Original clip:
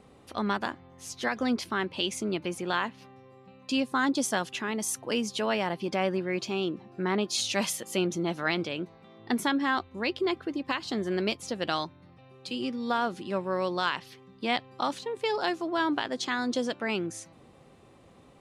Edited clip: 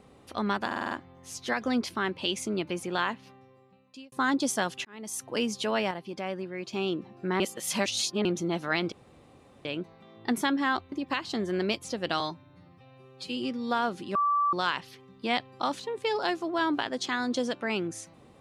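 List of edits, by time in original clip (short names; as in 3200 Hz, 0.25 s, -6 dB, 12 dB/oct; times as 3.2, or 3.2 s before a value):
0.66 stutter 0.05 s, 6 plays
2.88–3.87 fade out
4.6–5.09 fade in
5.66–6.48 gain -6.5 dB
7.15–8 reverse
8.67 insert room tone 0.73 s
9.94–10.5 cut
11.78–12.56 stretch 1.5×
13.34–13.72 bleep 1160 Hz -22 dBFS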